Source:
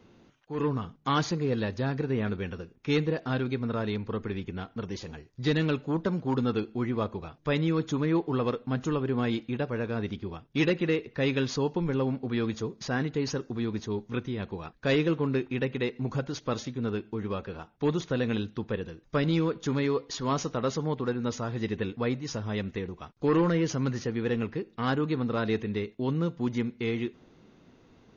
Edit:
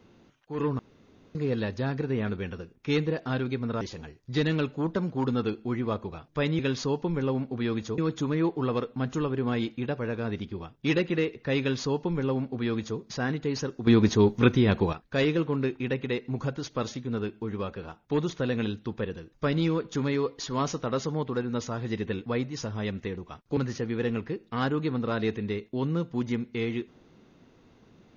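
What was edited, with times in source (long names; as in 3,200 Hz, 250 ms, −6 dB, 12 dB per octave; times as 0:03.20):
0:00.79–0:01.35: fill with room tone
0:03.81–0:04.91: remove
0:11.31–0:12.70: duplicate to 0:07.69
0:13.58–0:14.64: clip gain +11.5 dB
0:23.28–0:23.83: remove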